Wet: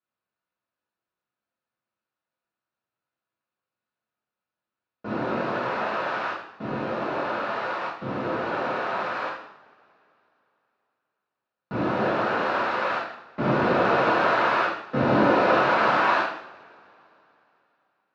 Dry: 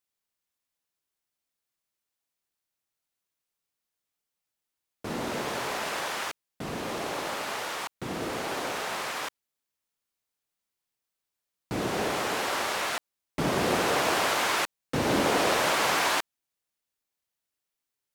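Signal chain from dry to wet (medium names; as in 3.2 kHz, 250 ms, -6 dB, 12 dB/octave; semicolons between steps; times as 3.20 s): cabinet simulation 100–3300 Hz, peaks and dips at 1.4 kHz +4 dB, 2.1 kHz -9 dB, 3.2 kHz -10 dB; two-slope reverb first 0.65 s, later 3.2 s, from -26 dB, DRR -8 dB; trim -3 dB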